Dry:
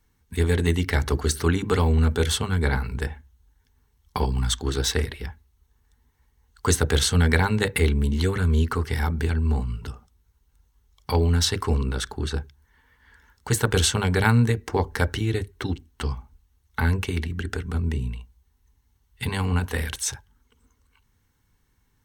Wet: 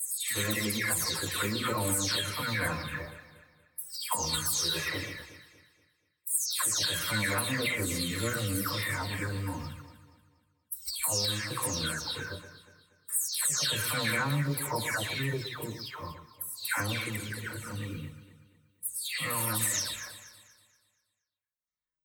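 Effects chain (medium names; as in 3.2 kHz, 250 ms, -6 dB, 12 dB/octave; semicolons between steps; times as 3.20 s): delay that grows with frequency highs early, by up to 377 ms; pre-emphasis filter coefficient 0.97; band-stop 2.8 kHz, Q 6.8; gate -58 dBFS, range -47 dB; treble shelf 2.1 kHz -5.5 dB; hum notches 50/100/150/200/250/300/350 Hz; harmonic-percussive split harmonic +8 dB; in parallel at -1 dB: peak limiter -28.5 dBFS, peak gain reduction 11.5 dB; on the sum: compression, threshold -33 dBFS, peak gain reduction 9 dB; formant-preserving pitch shift +3.5 st; on a send: echo whose repeats swap between lows and highs 119 ms, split 1.1 kHz, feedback 62%, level -9 dB; on the sum: trim +7.5 dB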